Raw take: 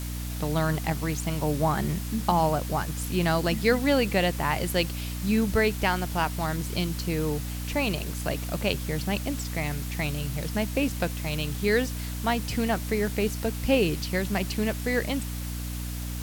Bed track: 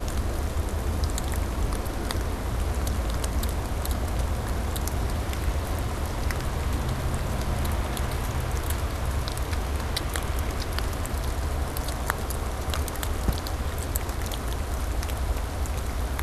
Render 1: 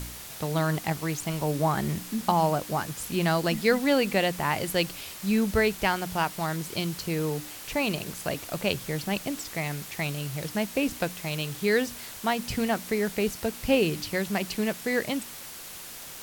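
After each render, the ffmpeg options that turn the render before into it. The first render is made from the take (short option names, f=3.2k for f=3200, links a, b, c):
-af "bandreject=f=60:t=h:w=4,bandreject=f=120:t=h:w=4,bandreject=f=180:t=h:w=4,bandreject=f=240:t=h:w=4,bandreject=f=300:t=h:w=4"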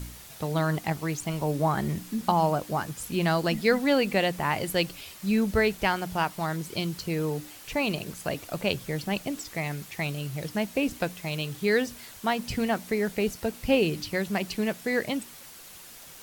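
-af "afftdn=nr=6:nf=-42"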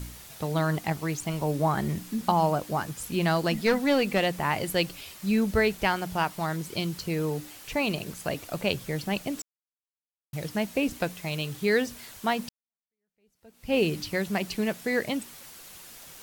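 -filter_complex "[0:a]asettb=1/sr,asplit=3[a][b][c];[a]atrim=end=3.364[d];[b]atrim=start=3.36:end=4.27,asetpts=PTS-STARTPTS,afade=t=in:d=0.004:c=qsin,afade=t=out:st=0.906:d=0.004:c=qsin,aeval=exprs='clip(val(0),-1,0.0944)':c=same[e];[c]atrim=start=4.266[f];[d][e]acrossfade=d=0.004:c1=hsin:c2=qsin[g];[g][f]acrossfade=d=0.004:c1=qsin:c2=hsin,asplit=4[h][i][j][k];[h]atrim=end=9.42,asetpts=PTS-STARTPTS,afade=t=out:st=9.416:d=0.004:c=hsin[l];[i]atrim=start=9.42:end=10.33,asetpts=PTS-STARTPTS,volume=0[m];[j]atrim=start=10.33:end=12.49,asetpts=PTS-STARTPTS,afade=t=in:d=0.004:c=hsin,afade=t=out:st=2.156:d=0.004:c=hsin[n];[k]atrim=start=12.49,asetpts=PTS-STARTPTS,afade=t=in:d=1.29:c=exp[o];[l][m][n][o]concat=n=4:v=0:a=1"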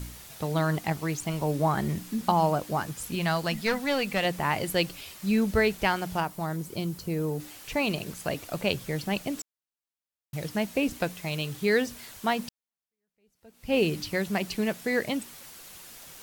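-filter_complex "[0:a]asettb=1/sr,asplit=3[a][b][c];[a]atrim=end=3.154[d];[b]atrim=start=3.15:end=4.25,asetpts=PTS-STARTPTS,afade=t=in:d=0.004:c=qsin,afade=t=out:st=1.096:d=0.004:c=qsin,equalizer=f=340:w=0.99:g=-7.5[e];[c]atrim=start=4.246[f];[d][e]acrossfade=d=0.004:c1=hsin:c2=qsin[g];[g][f]acrossfade=d=0.004:c1=qsin:c2=hsin,asettb=1/sr,asplit=3[h][i][j];[h]atrim=end=6.204[k];[i]atrim=start=6.2:end=7.4,asetpts=PTS-STARTPTS,afade=t=in:d=0.004:c=qsin,afade=t=out:st=1.196:d=0.004:c=qsin,equalizer=f=2.9k:w=0.41:g=-8[l];[j]atrim=start=7.396[m];[k][l]acrossfade=d=0.004:c1=hsin:c2=qsin[n];[n][m]acrossfade=d=0.004:c1=qsin:c2=hsin"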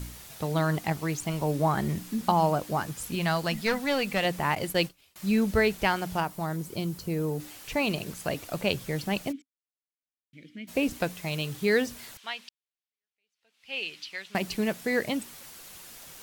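-filter_complex "[0:a]asettb=1/sr,asplit=3[a][b][c];[a]atrim=end=4.554[d];[b]atrim=start=4.55:end=5.16,asetpts=PTS-STARTPTS,afade=t=in:d=0.004:c=qsin,afade=t=out:st=0.606:d=0.004:c=qsin,agate=range=-33dB:threshold=-31dB:ratio=3:release=100:detection=peak[e];[c]atrim=start=5.156[f];[d][e]acrossfade=d=0.004:c1=hsin:c2=qsin[g];[g][f]acrossfade=d=0.004:c1=qsin:c2=hsin,asplit=3[h][i][j];[h]afade=t=out:st=9.31:d=0.02[k];[i]asplit=3[l][m][n];[l]bandpass=f=270:t=q:w=8,volume=0dB[o];[m]bandpass=f=2.29k:t=q:w=8,volume=-6dB[p];[n]bandpass=f=3.01k:t=q:w=8,volume=-9dB[q];[o][p][q]amix=inputs=3:normalize=0,afade=t=in:st=9.31:d=0.02,afade=t=out:st=10.67:d=0.02[r];[j]afade=t=in:st=10.67:d=0.02[s];[k][r][s]amix=inputs=3:normalize=0,asettb=1/sr,asplit=3[t][u][v];[t]atrim=end=12.174[w];[u]atrim=start=12.17:end=14.35,asetpts=PTS-STARTPTS,afade=t=in:d=0.004:c=qsin,afade=t=out:st=2.176:d=0.004:c=qsin,bandpass=f=3k:t=q:w=1.4[x];[v]atrim=start=14.346[y];[w][x]acrossfade=d=0.004:c1=hsin:c2=qsin[z];[z][y]acrossfade=d=0.004:c1=qsin:c2=hsin"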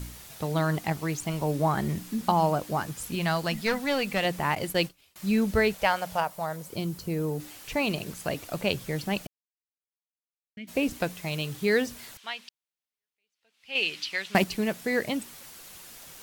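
-filter_complex "[0:a]asettb=1/sr,asplit=3[a][b][c];[a]atrim=end=5.744[d];[b]atrim=start=5.74:end=6.73,asetpts=PTS-STARTPTS,afade=t=in:d=0.004:c=qsin,afade=t=out:st=0.986:d=0.004:c=qsin,lowshelf=f=440:t=q:w=3:g=-6[e];[c]atrim=start=6.726[f];[d][e]acrossfade=d=0.004:c1=hsin:c2=qsin[g];[g][f]acrossfade=d=0.004:c1=qsin:c2=hsin,asettb=1/sr,asplit=3[h][i][j];[h]atrim=end=13.754[k];[i]atrim=start=13.75:end=14.44,asetpts=PTS-STARTPTS,afade=t=in:d=0.004:c=qsin,afade=t=out:st=0.686:d=0.004:c=qsin,acontrast=80[l];[j]atrim=start=14.436[m];[k][l]acrossfade=d=0.004:c1=hsin:c2=qsin[n];[n][m]acrossfade=d=0.004:c1=qsin:c2=hsin,asplit=3[o][p][q];[o]atrim=end=9.27,asetpts=PTS-STARTPTS,afade=t=out:st=9.266:d=0.004:c=hsin[r];[p]atrim=start=9.27:end=10.57,asetpts=PTS-STARTPTS,volume=0[s];[q]atrim=start=10.57,asetpts=PTS-STARTPTS,afade=t=in:d=0.004:c=hsin[t];[r][s][t]concat=n=3:v=0:a=1"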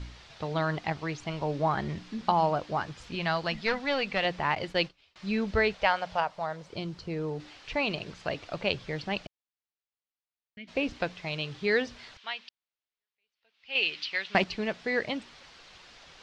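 -af "lowpass=f=4.8k:w=0.5412,lowpass=f=4.8k:w=1.3066,equalizer=f=200:t=o:w=2:g=-6"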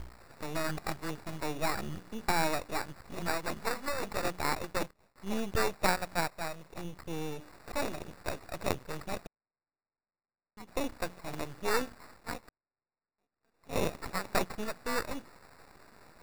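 -af "acrusher=samples=14:mix=1:aa=0.000001,aeval=exprs='max(val(0),0)':c=same"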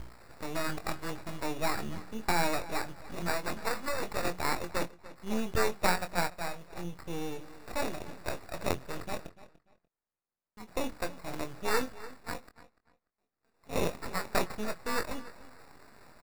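-filter_complex "[0:a]asplit=2[a][b];[b]adelay=23,volume=-8.5dB[c];[a][c]amix=inputs=2:normalize=0,asplit=2[d][e];[e]adelay=293,lowpass=f=5k:p=1,volume=-17dB,asplit=2[f][g];[g]adelay=293,lowpass=f=5k:p=1,volume=0.23[h];[d][f][h]amix=inputs=3:normalize=0"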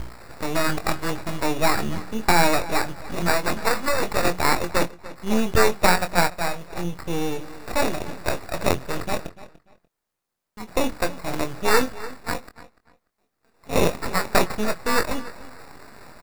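-af "volume=11dB,alimiter=limit=-2dB:level=0:latency=1"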